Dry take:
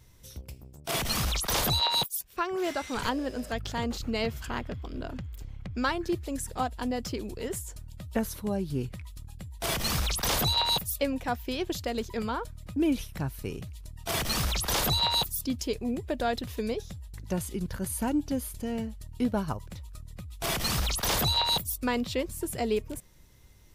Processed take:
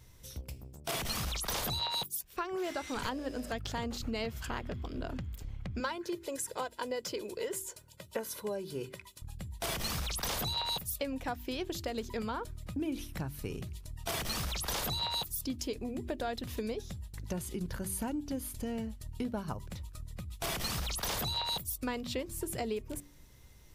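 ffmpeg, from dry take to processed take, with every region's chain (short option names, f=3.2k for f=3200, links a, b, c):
-filter_complex "[0:a]asettb=1/sr,asplit=3[a][b][c];[a]atrim=end=5.804[d];[b]atrim=start=5.8:end=9.22,asetpts=PTS-STARTPTS,afade=t=in:d=0.004:c=qsin,afade=t=out:st=3.416:d=0.004:c=qsin,highpass=260,aecho=1:1:2:0.58,atrim=end_sample=150822[e];[c]atrim=start=9.216[f];[d][e]acrossfade=d=0.004:c1=hsin:c2=qsin[g];[g][f]acrossfade=d=0.004:c1=qsin:c2=hsin,acompressor=threshold=-33dB:ratio=4,bandreject=f=48.09:t=h:w=4,bandreject=f=96.18:t=h:w=4,bandreject=f=144.27:t=h:w=4,bandreject=f=192.36:t=h:w=4,bandreject=f=240.45:t=h:w=4,bandreject=f=288.54:t=h:w=4,bandreject=f=336.63:t=h:w=4,bandreject=f=384.72:t=h:w=4"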